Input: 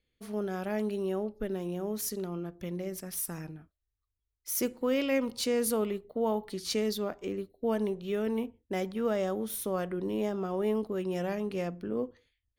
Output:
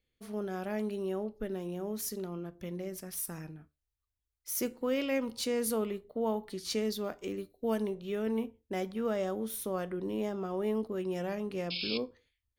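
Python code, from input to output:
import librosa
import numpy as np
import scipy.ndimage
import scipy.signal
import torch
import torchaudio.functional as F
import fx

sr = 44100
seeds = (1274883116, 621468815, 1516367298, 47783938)

y = fx.high_shelf(x, sr, hz=3500.0, db=7.5, at=(7.04, 7.82))
y = fx.spec_paint(y, sr, seeds[0], shape='noise', start_s=11.7, length_s=0.28, low_hz=2200.0, high_hz=5300.0, level_db=-34.0)
y = fx.comb_fb(y, sr, f0_hz=74.0, decay_s=0.22, harmonics='all', damping=0.0, mix_pct=40)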